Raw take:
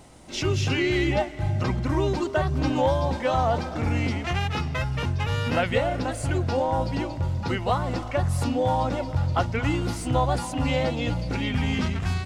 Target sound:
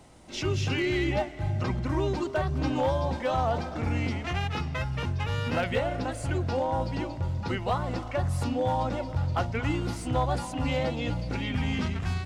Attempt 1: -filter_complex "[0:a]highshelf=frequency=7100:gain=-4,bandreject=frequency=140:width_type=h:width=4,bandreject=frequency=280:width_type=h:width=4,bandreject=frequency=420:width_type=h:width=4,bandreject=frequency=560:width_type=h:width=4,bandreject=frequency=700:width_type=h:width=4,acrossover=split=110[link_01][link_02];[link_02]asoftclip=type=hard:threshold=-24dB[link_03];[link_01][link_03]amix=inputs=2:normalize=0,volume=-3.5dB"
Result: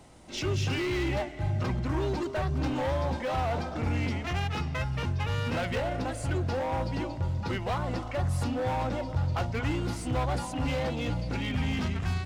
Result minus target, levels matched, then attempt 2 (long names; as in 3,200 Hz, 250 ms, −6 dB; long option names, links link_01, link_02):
hard clipping: distortion +14 dB
-filter_complex "[0:a]highshelf=frequency=7100:gain=-4,bandreject=frequency=140:width_type=h:width=4,bandreject=frequency=280:width_type=h:width=4,bandreject=frequency=420:width_type=h:width=4,bandreject=frequency=560:width_type=h:width=4,bandreject=frequency=700:width_type=h:width=4,acrossover=split=110[link_01][link_02];[link_02]asoftclip=type=hard:threshold=-16.5dB[link_03];[link_01][link_03]amix=inputs=2:normalize=0,volume=-3.5dB"